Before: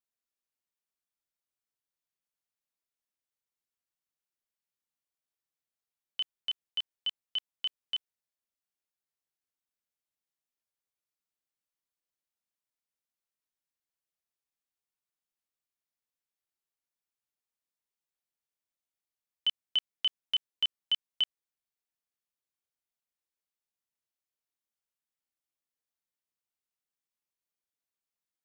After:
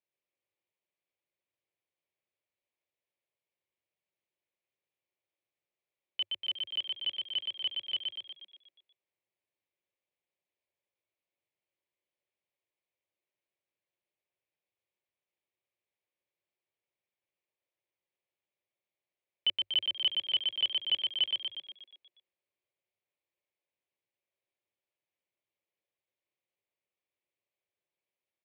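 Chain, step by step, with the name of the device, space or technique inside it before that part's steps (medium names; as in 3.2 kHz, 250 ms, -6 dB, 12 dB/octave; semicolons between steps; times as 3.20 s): frequency-shifting delay pedal into a guitar cabinet (frequency-shifting echo 120 ms, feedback 57%, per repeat +45 Hz, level -3 dB; cabinet simulation 97–3600 Hz, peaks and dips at 100 Hz +8 dB, 250 Hz -7 dB, 360 Hz +8 dB, 560 Hz +9 dB, 1.4 kHz -10 dB, 2.3 kHz +6 dB)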